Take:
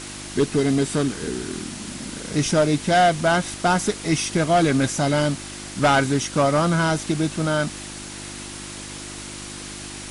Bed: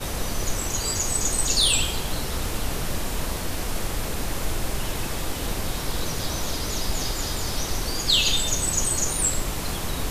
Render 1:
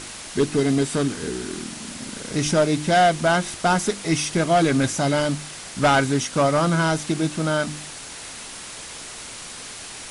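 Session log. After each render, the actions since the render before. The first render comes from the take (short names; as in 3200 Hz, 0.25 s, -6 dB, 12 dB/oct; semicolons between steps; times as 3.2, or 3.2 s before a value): de-hum 50 Hz, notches 7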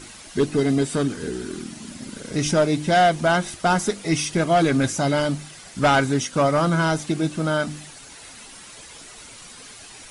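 denoiser 9 dB, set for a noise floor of -37 dBFS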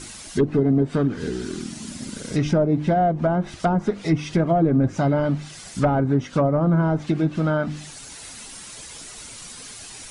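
treble ducked by the level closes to 670 Hz, closed at -15 dBFS; tone controls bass +4 dB, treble +5 dB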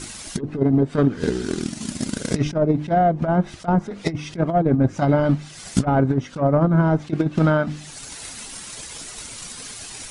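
transient shaper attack +11 dB, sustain -4 dB; negative-ratio compressor -17 dBFS, ratio -0.5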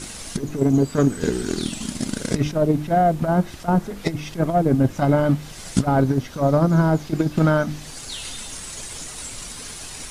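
add bed -15 dB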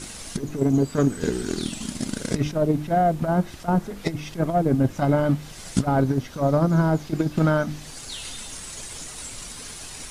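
gain -2.5 dB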